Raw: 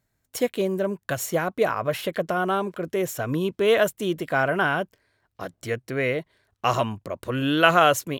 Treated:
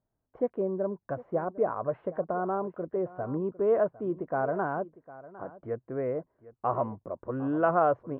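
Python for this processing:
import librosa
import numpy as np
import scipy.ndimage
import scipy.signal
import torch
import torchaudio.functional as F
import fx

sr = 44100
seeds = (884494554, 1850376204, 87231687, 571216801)

p1 = scipy.signal.sosfilt(scipy.signal.butter(4, 1100.0, 'lowpass', fs=sr, output='sos'), x)
p2 = fx.peak_eq(p1, sr, hz=89.0, db=-5.5, octaves=2.4)
p3 = p2 + fx.echo_single(p2, sr, ms=755, db=-18.0, dry=0)
y = p3 * librosa.db_to_amplitude(-4.0)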